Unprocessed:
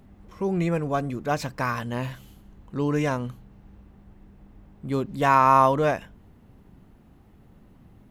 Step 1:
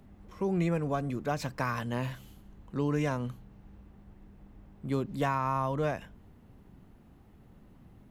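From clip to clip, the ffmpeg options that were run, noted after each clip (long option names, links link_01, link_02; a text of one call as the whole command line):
ffmpeg -i in.wav -filter_complex "[0:a]acrossover=split=180[link_01][link_02];[link_02]acompressor=threshold=-24dB:ratio=6[link_03];[link_01][link_03]amix=inputs=2:normalize=0,volume=-3dB" out.wav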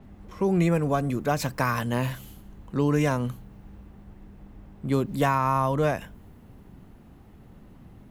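ffmpeg -i in.wav -af "adynamicequalizer=threshold=0.00112:dfrequency=7800:dqfactor=0.7:tfrequency=7800:tqfactor=0.7:attack=5:release=100:ratio=0.375:range=4:mode=boostabove:tftype=highshelf,volume=6.5dB" out.wav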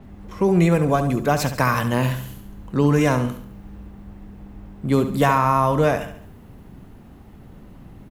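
ffmpeg -i in.wav -af "aecho=1:1:70|140|210|280|350:0.299|0.131|0.0578|0.0254|0.0112,volume=5.5dB" out.wav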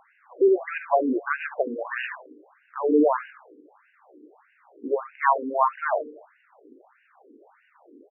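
ffmpeg -i in.wav -af "afftfilt=real='re*between(b*sr/1024,340*pow(2100/340,0.5+0.5*sin(2*PI*1.6*pts/sr))/1.41,340*pow(2100/340,0.5+0.5*sin(2*PI*1.6*pts/sr))*1.41)':imag='im*between(b*sr/1024,340*pow(2100/340,0.5+0.5*sin(2*PI*1.6*pts/sr))/1.41,340*pow(2100/340,0.5+0.5*sin(2*PI*1.6*pts/sr))*1.41)':win_size=1024:overlap=0.75,volume=2.5dB" out.wav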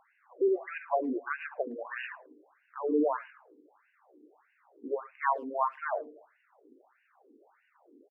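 ffmpeg -i in.wav -filter_complex "[0:a]asplit=2[link_01][link_02];[link_02]adelay=110,highpass=300,lowpass=3400,asoftclip=type=hard:threshold=-15.5dB,volume=-30dB[link_03];[link_01][link_03]amix=inputs=2:normalize=0,volume=-8dB" out.wav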